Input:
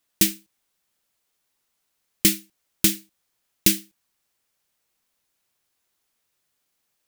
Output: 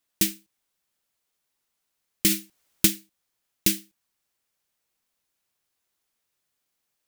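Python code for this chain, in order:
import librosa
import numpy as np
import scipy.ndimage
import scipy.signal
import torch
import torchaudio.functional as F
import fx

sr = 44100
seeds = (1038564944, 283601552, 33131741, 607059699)

y = fx.transient(x, sr, attack_db=4, sustain_db=8, at=(2.26, 2.88))
y = F.gain(torch.from_numpy(y), -4.0).numpy()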